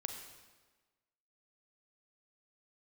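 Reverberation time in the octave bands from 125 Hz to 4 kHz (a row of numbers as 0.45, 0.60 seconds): 1.2, 1.4, 1.3, 1.3, 1.2, 1.1 seconds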